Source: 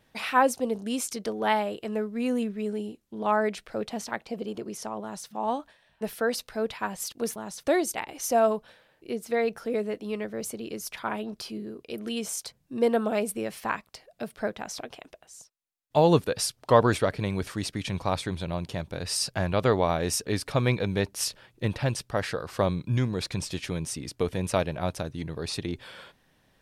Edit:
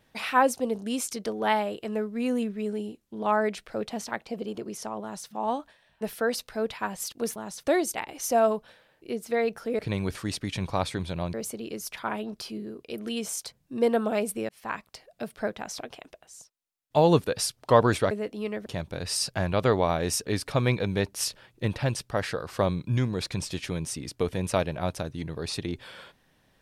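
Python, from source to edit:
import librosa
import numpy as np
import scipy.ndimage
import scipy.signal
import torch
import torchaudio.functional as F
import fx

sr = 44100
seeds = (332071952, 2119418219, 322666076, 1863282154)

y = fx.edit(x, sr, fx.swap(start_s=9.79, length_s=0.55, other_s=17.11, other_length_s=1.55),
    fx.fade_in_span(start_s=13.49, length_s=0.33), tone=tone)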